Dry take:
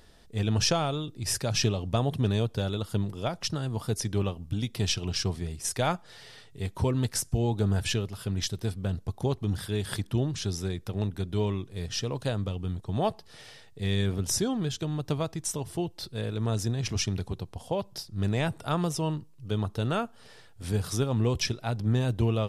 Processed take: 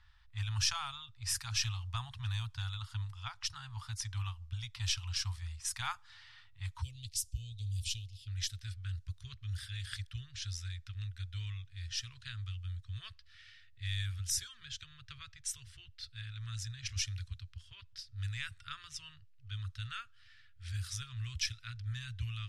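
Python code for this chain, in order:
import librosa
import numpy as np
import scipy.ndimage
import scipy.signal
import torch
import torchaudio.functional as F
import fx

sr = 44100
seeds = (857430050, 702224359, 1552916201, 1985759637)

y = fx.cheby2_bandstop(x, sr, low_hz=170.0, high_hz=fx.steps((0.0, 610.0), (6.81, 1600.0), (8.27, 860.0)), order=4, stop_db=40)
y = fx.env_lowpass(y, sr, base_hz=2800.0, full_db=-27.0)
y = y * librosa.db_to_amplitude(-5.0)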